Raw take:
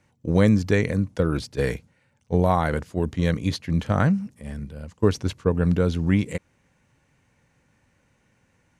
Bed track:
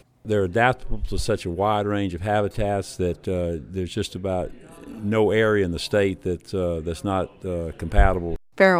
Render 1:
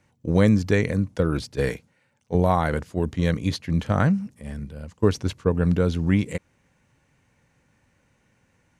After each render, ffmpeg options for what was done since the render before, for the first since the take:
ffmpeg -i in.wav -filter_complex "[0:a]asettb=1/sr,asplit=3[link_01][link_02][link_03];[link_01]atrim=end=1.694[link_04];[link_02]atrim=start=1.69:end=2.35,asetpts=PTS-STARTPTS,afade=type=in:duration=0.004:curve=qsin,afade=type=out:start_time=0.656:duration=0.004:curve=qsin,highpass=frequency=190:poles=1[link_05];[link_03]atrim=start=2.346[link_06];[link_04][link_05]acrossfade=duration=0.004:curve1=hsin:curve2=qsin[link_07];[link_07][link_06]acrossfade=duration=0.004:curve1=qsin:curve2=hsin" out.wav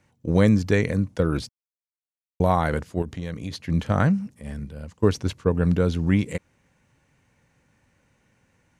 ffmpeg -i in.wav -filter_complex "[0:a]asettb=1/sr,asplit=3[link_01][link_02][link_03];[link_01]atrim=end=3.024[link_04];[link_02]atrim=start=3.02:end=3.63,asetpts=PTS-STARTPTS,afade=type=in:duration=0.004:curve=qsin,afade=type=out:start_time=0.606:duration=0.004:curve=qsin,acompressor=threshold=-29dB:ratio=3:attack=3.2:release=140:knee=1:detection=peak[link_05];[link_03]atrim=start=3.626[link_06];[link_04][link_05]acrossfade=duration=0.004:curve1=hsin:curve2=qsin[link_07];[link_07][link_06]acrossfade=duration=0.004:curve1=qsin:curve2=hsin,asplit=3[link_08][link_09][link_10];[link_08]atrim=end=1.49,asetpts=PTS-STARTPTS,afade=type=out:start_time=1.486:duration=0.004:curve=hsin[link_11];[link_09]atrim=start=1.49:end=2.4,asetpts=PTS-STARTPTS,volume=0[link_12];[link_10]atrim=start=2.4,asetpts=PTS-STARTPTS,afade=type=in:duration=0.004:curve=hsin[link_13];[link_11][link_12][link_13]concat=n=3:v=0:a=1" out.wav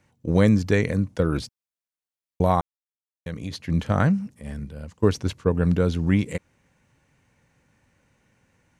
ffmpeg -i in.wav -filter_complex "[0:a]asplit=3[link_01][link_02][link_03];[link_01]atrim=end=2.61,asetpts=PTS-STARTPTS,afade=type=out:start_time=2.606:duration=0.004:curve=hsin[link_04];[link_02]atrim=start=2.61:end=3.26,asetpts=PTS-STARTPTS,volume=0[link_05];[link_03]atrim=start=3.26,asetpts=PTS-STARTPTS,afade=type=in:duration=0.004:curve=hsin[link_06];[link_04][link_05][link_06]concat=n=3:v=0:a=1" out.wav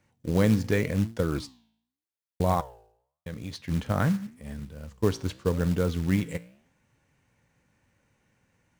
ffmpeg -i in.wav -af "flanger=delay=8.7:depth=9.4:regen=84:speed=0.87:shape=sinusoidal,acrusher=bits=5:mode=log:mix=0:aa=0.000001" out.wav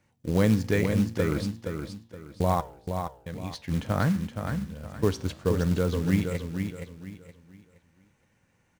ffmpeg -i in.wav -af "aecho=1:1:470|940|1410|1880:0.473|0.142|0.0426|0.0128" out.wav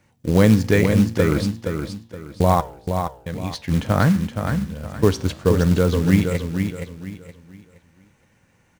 ffmpeg -i in.wav -af "volume=8dB" out.wav

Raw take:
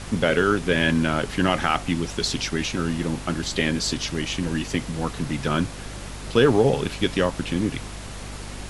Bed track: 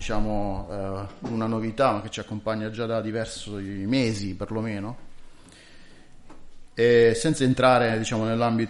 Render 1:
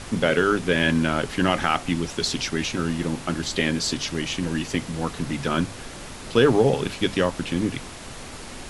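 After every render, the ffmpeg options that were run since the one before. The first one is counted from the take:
ffmpeg -i in.wav -af "bandreject=frequency=50:width_type=h:width=6,bandreject=frequency=100:width_type=h:width=6,bandreject=frequency=150:width_type=h:width=6,bandreject=frequency=200:width_type=h:width=6" out.wav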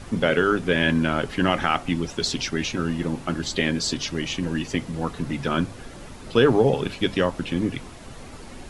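ffmpeg -i in.wav -af "afftdn=noise_reduction=8:noise_floor=-38" out.wav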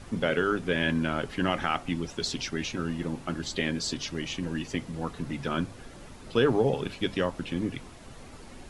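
ffmpeg -i in.wav -af "volume=-6dB" out.wav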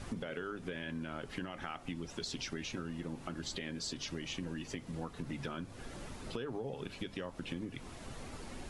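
ffmpeg -i in.wav -af "alimiter=limit=-22dB:level=0:latency=1:release=371,acompressor=threshold=-37dB:ratio=6" out.wav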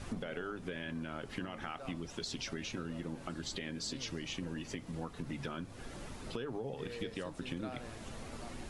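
ffmpeg -i in.wav -i bed.wav -filter_complex "[1:a]volume=-28.5dB[link_01];[0:a][link_01]amix=inputs=2:normalize=0" out.wav

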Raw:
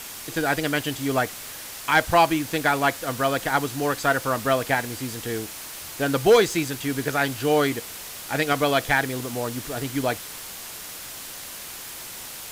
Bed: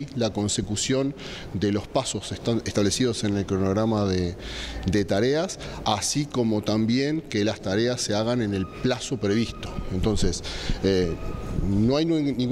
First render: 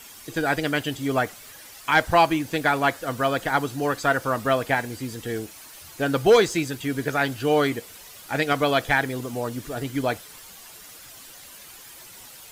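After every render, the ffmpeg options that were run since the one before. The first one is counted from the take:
ffmpeg -i in.wav -af "afftdn=noise_reduction=10:noise_floor=-38" out.wav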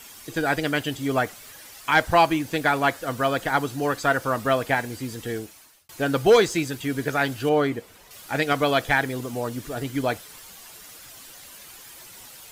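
ffmpeg -i in.wav -filter_complex "[0:a]asettb=1/sr,asplit=3[link_01][link_02][link_03];[link_01]atrim=end=7.494[link_04];[link_02]atrim=start=7.49:end=8.11,asetpts=PTS-STARTPTS,afade=type=in:duration=0.004:curve=qsin,afade=type=out:start_time=0.616:duration=0.004:curve=qsin,highshelf=frequency=2500:gain=-10[link_05];[link_03]atrim=start=8.106[link_06];[link_04][link_05]acrossfade=duration=0.004:curve1=hsin:curve2=qsin[link_07];[link_07][link_06]acrossfade=duration=0.004:curve1=qsin:curve2=hsin,asplit=2[link_08][link_09];[link_08]atrim=end=5.89,asetpts=PTS-STARTPTS,afade=type=out:start_time=5.29:duration=0.6[link_10];[link_09]atrim=start=5.89,asetpts=PTS-STARTPTS,afade=type=in:duration=0.004:curve=hsin[link_11];[link_10][link_11]concat=n=2:v=0:a=1" out.wav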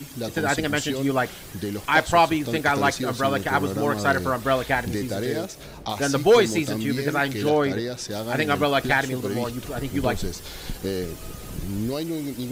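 ffmpeg -i in.wav -i bed.wav -filter_complex "[1:a]volume=-6dB[link_01];[0:a][link_01]amix=inputs=2:normalize=0" out.wav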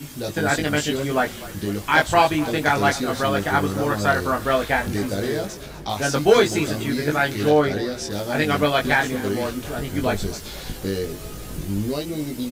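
ffmpeg -i in.wav -filter_complex "[0:a]asplit=2[link_01][link_02];[link_02]adelay=20,volume=-2.5dB[link_03];[link_01][link_03]amix=inputs=2:normalize=0,asplit=7[link_04][link_05][link_06][link_07][link_08][link_09][link_10];[link_05]adelay=248,afreqshift=-35,volume=-18dB[link_11];[link_06]adelay=496,afreqshift=-70,volume=-22dB[link_12];[link_07]adelay=744,afreqshift=-105,volume=-26dB[link_13];[link_08]adelay=992,afreqshift=-140,volume=-30dB[link_14];[link_09]adelay=1240,afreqshift=-175,volume=-34.1dB[link_15];[link_10]adelay=1488,afreqshift=-210,volume=-38.1dB[link_16];[link_04][link_11][link_12][link_13][link_14][link_15][link_16]amix=inputs=7:normalize=0" out.wav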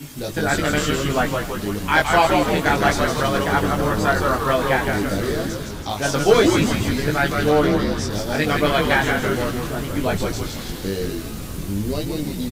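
ffmpeg -i in.wav -filter_complex "[0:a]asplit=9[link_01][link_02][link_03][link_04][link_05][link_06][link_07][link_08][link_09];[link_02]adelay=163,afreqshift=-120,volume=-4dB[link_10];[link_03]adelay=326,afreqshift=-240,volume=-9dB[link_11];[link_04]adelay=489,afreqshift=-360,volume=-14.1dB[link_12];[link_05]adelay=652,afreqshift=-480,volume=-19.1dB[link_13];[link_06]adelay=815,afreqshift=-600,volume=-24.1dB[link_14];[link_07]adelay=978,afreqshift=-720,volume=-29.2dB[link_15];[link_08]adelay=1141,afreqshift=-840,volume=-34.2dB[link_16];[link_09]adelay=1304,afreqshift=-960,volume=-39.3dB[link_17];[link_01][link_10][link_11][link_12][link_13][link_14][link_15][link_16][link_17]amix=inputs=9:normalize=0" out.wav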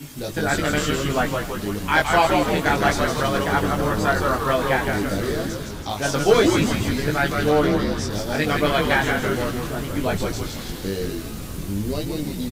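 ffmpeg -i in.wav -af "volume=-1.5dB" out.wav

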